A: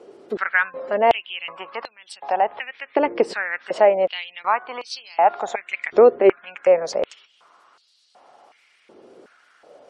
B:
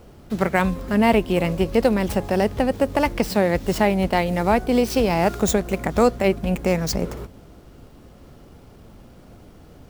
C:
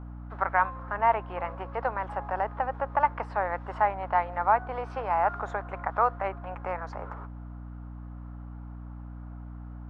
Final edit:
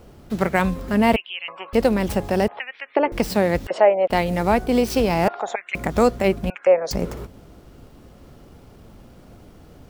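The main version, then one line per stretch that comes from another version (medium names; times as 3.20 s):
B
1.16–1.73 s: from A
2.48–3.12 s: from A
3.67–4.10 s: from A
5.28–5.75 s: from A
6.50–6.91 s: from A
not used: C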